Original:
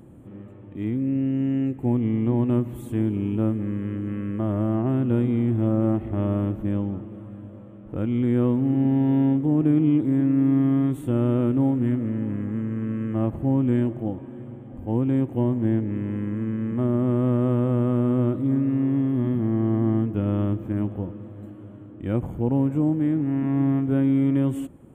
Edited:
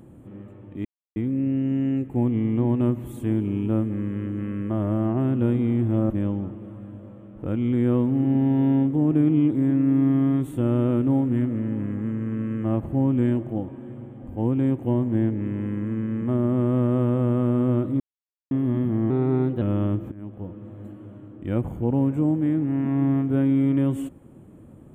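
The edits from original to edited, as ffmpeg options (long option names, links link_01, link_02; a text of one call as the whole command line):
ffmpeg -i in.wav -filter_complex "[0:a]asplit=8[link_01][link_02][link_03][link_04][link_05][link_06][link_07][link_08];[link_01]atrim=end=0.85,asetpts=PTS-STARTPTS,afade=type=out:start_time=0.846:duration=0.004:curve=hsin,apad=pad_dur=0.31[link_09];[link_02]atrim=start=0.85:end=5.792,asetpts=PTS-STARTPTS,afade=type=in:duration=0.004:curve=hsin[link_10];[link_03]atrim=start=6.598:end=18.5,asetpts=PTS-STARTPTS,afade=type=out:start_time=11.898:duration=0.004:curve=hsin[link_11];[link_04]atrim=start=18.5:end=19.01,asetpts=PTS-STARTPTS,volume=0[link_12];[link_05]atrim=start=19.01:end=19.604,asetpts=PTS-STARTPTS,afade=type=in:duration=0.004:curve=hsin[link_13];[link_06]atrim=start=19.6:end=20.2,asetpts=PTS-STARTPTS,asetrate=51156,aresample=44100,atrim=end_sample=22810,asetpts=PTS-STARTPTS[link_14];[link_07]atrim=start=20.196:end=20.7,asetpts=PTS-STARTPTS,afade=type=out:start_time=0.5:duration=0.004:curve=hsin:silence=0.0944061[link_15];[link_08]atrim=start=20.7,asetpts=PTS-STARTPTS,afade=type=in:duration=0.63:silence=0.0944061[link_16];[link_09][link_10]concat=n=2:v=0:a=1[link_17];[link_11][link_12][link_13]concat=n=3:v=0:a=1[link_18];[link_17][link_18]acrossfade=duration=0.004:curve1=hsin:curve2=hsin[link_19];[link_19][link_14]acrossfade=duration=0.004:curve1=hsin:curve2=hsin[link_20];[link_15][link_16]concat=n=2:v=0:a=1[link_21];[link_20][link_21]acrossfade=duration=0.004:curve1=hsin:curve2=hsin" out.wav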